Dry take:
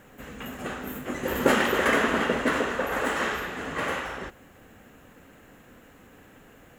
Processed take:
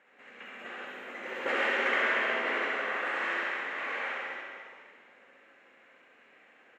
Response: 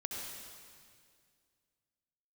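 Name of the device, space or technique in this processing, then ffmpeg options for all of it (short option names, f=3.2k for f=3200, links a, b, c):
station announcement: -filter_complex "[0:a]highpass=470,lowpass=3.8k,equalizer=f=2.2k:t=o:w=0.58:g=9,aecho=1:1:67.06|134.1:0.562|0.355[a];[1:a]atrim=start_sample=2205[b];[a][b]afir=irnorm=-1:irlink=0,volume=-8.5dB"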